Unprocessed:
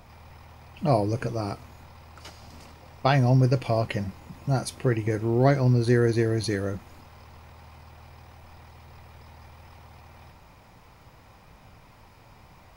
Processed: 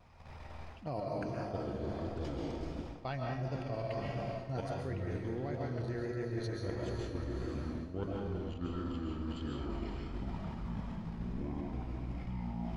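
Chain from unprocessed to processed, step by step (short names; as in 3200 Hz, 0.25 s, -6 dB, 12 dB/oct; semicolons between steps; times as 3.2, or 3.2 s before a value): air absorption 61 m; echoes that change speed 0.255 s, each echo -6 st, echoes 3, each echo -6 dB; level quantiser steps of 12 dB; on a send: diffused feedback echo 0.451 s, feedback 49%, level -9.5 dB; on the sum: digital reverb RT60 0.73 s, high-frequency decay 0.9×, pre-delay 95 ms, DRR 0 dB; vibrato 1.5 Hz 37 cents; reverse; compressor 12:1, threshold -33 dBFS, peak gain reduction 16.5 dB; reverse; gain -1 dB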